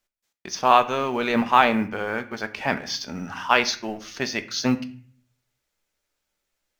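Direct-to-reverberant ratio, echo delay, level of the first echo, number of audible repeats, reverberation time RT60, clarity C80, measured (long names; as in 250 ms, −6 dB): 9.0 dB, no echo audible, no echo audible, no echo audible, 0.50 s, 19.0 dB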